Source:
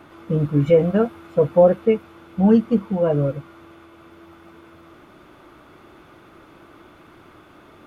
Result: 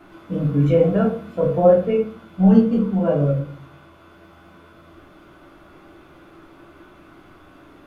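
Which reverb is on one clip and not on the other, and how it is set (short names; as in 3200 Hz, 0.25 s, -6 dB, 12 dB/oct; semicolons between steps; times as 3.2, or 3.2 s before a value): shoebox room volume 360 m³, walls furnished, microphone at 3.1 m; gain -5.5 dB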